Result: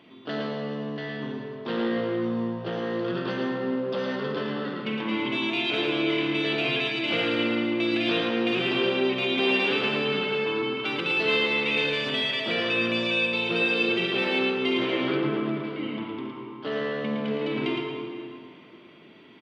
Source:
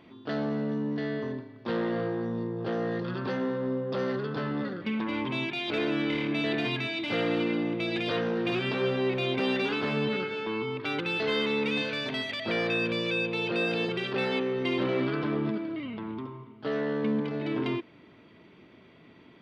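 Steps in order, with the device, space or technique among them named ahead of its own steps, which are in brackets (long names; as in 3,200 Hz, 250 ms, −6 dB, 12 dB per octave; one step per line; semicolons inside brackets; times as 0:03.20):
PA in a hall (high-pass filter 140 Hz 12 dB per octave; parametric band 3,000 Hz +7 dB 0.49 octaves; single-tap delay 112 ms −5 dB; convolution reverb RT60 2.6 s, pre-delay 34 ms, DRR 3 dB)
0:15.17–0:15.64: high-shelf EQ 3,800 Hz −9.5 dB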